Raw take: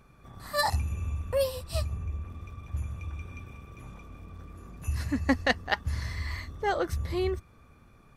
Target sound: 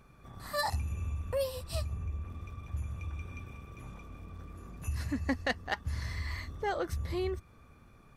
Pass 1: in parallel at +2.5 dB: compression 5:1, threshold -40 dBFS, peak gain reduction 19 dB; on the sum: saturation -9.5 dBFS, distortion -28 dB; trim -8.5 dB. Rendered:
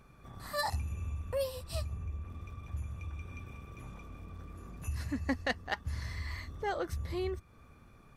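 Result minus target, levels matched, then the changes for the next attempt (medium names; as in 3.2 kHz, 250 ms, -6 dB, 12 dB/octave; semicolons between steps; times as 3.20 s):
compression: peak gain reduction +6 dB
change: compression 5:1, threshold -32.5 dBFS, peak gain reduction 13 dB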